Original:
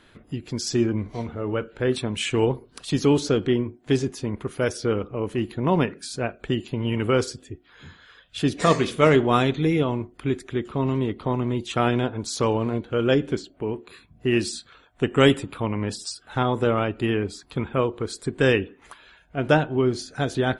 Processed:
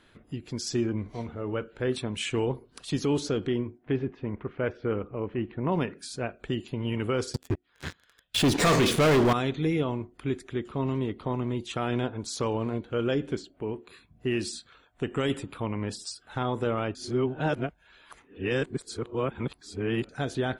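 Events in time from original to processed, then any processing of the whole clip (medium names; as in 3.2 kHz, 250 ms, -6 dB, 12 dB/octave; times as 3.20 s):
3.78–5.72 s: low-pass 2.6 kHz 24 dB/octave
7.34–9.33 s: waveshaping leveller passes 5
16.95–20.09 s: reverse
whole clip: peak limiter -12.5 dBFS; trim -5 dB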